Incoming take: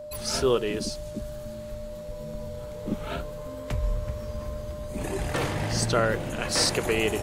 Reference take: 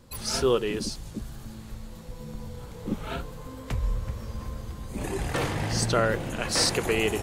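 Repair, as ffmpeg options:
-af "bandreject=f=600:w=30"

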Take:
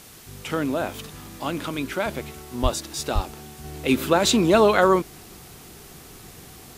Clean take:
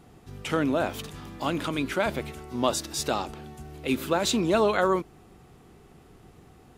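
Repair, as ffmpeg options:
-filter_complex "[0:a]asplit=3[a][b][c];[a]afade=t=out:st=2.62:d=0.02[d];[b]highpass=f=140:w=0.5412,highpass=f=140:w=1.3066,afade=t=in:st=2.62:d=0.02,afade=t=out:st=2.74:d=0.02[e];[c]afade=t=in:st=2.74:d=0.02[f];[d][e][f]amix=inputs=3:normalize=0,asplit=3[g][h][i];[g]afade=t=out:st=3.14:d=0.02[j];[h]highpass=f=140:w=0.5412,highpass=f=140:w=1.3066,afade=t=in:st=3.14:d=0.02,afade=t=out:st=3.26:d=0.02[k];[i]afade=t=in:st=3.26:d=0.02[l];[j][k][l]amix=inputs=3:normalize=0,afwtdn=0.005,asetnsamples=n=441:p=0,asendcmd='3.64 volume volume -6dB',volume=0dB"

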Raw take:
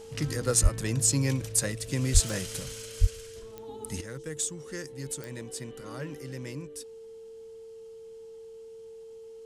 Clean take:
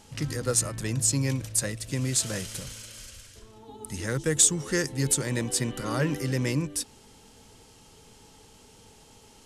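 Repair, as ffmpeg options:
-filter_complex "[0:a]adeclick=t=4,bandreject=f=450:w=30,asplit=3[a][b][c];[a]afade=t=out:st=0.62:d=0.02[d];[b]highpass=f=140:w=0.5412,highpass=f=140:w=1.3066,afade=t=in:st=0.62:d=0.02,afade=t=out:st=0.74:d=0.02[e];[c]afade=t=in:st=0.74:d=0.02[f];[d][e][f]amix=inputs=3:normalize=0,asplit=3[g][h][i];[g]afade=t=out:st=2.13:d=0.02[j];[h]highpass=f=140:w=0.5412,highpass=f=140:w=1.3066,afade=t=in:st=2.13:d=0.02,afade=t=out:st=2.25:d=0.02[k];[i]afade=t=in:st=2.25:d=0.02[l];[j][k][l]amix=inputs=3:normalize=0,asplit=3[m][n][o];[m]afade=t=out:st=3:d=0.02[p];[n]highpass=f=140:w=0.5412,highpass=f=140:w=1.3066,afade=t=in:st=3:d=0.02,afade=t=out:st=3.12:d=0.02[q];[o]afade=t=in:st=3.12:d=0.02[r];[p][q][r]amix=inputs=3:normalize=0,asetnsamples=n=441:p=0,asendcmd='4.01 volume volume 12dB',volume=0dB"

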